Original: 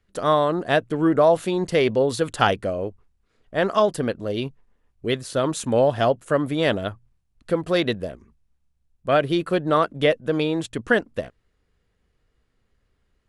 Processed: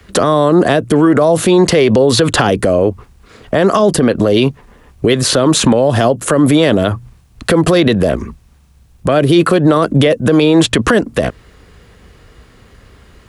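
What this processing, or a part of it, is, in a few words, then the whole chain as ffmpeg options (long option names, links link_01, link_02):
mastering chain: -filter_complex "[0:a]highpass=40,equalizer=frequency=1100:width_type=o:width=0.21:gain=3,acrossover=split=200|450|5300[link_01][link_02][link_03][link_04];[link_01]acompressor=threshold=-38dB:ratio=4[link_05];[link_02]acompressor=threshold=-27dB:ratio=4[link_06];[link_03]acompressor=threshold=-31dB:ratio=4[link_07];[link_04]acompressor=threshold=-47dB:ratio=4[link_08];[link_05][link_06][link_07][link_08]amix=inputs=4:normalize=0,acompressor=threshold=-31dB:ratio=2,alimiter=level_in=29.5dB:limit=-1dB:release=50:level=0:latency=1,volume=-1dB"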